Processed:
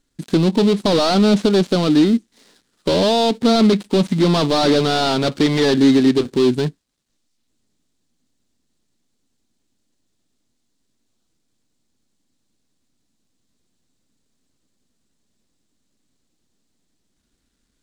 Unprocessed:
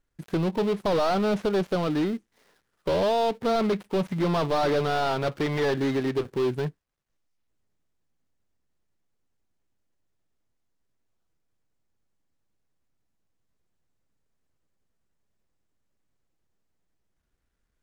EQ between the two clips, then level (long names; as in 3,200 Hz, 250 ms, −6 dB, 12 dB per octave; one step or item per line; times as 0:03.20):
octave-band graphic EQ 250/4,000/8,000 Hz +12/+10/+10 dB
+4.0 dB